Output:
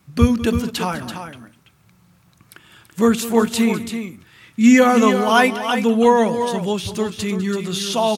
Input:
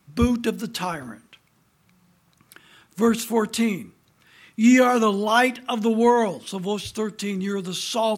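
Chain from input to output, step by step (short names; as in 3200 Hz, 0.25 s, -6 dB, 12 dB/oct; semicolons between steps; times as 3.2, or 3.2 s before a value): bell 94 Hz +7.5 dB 0.85 oct; tapped delay 0.202/0.334 s -16/-8.5 dB; gain +3.5 dB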